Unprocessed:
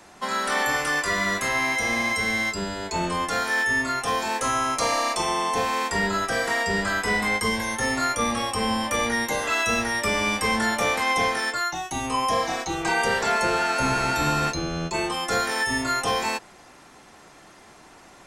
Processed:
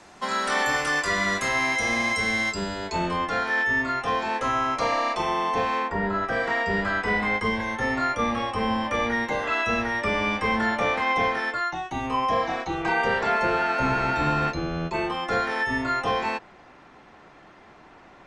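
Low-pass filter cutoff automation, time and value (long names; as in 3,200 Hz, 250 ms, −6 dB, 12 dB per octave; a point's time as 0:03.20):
0:02.61 7,700 Hz
0:03.26 3,100 Hz
0:05.76 3,100 Hz
0:05.96 1,300 Hz
0:06.46 2,800 Hz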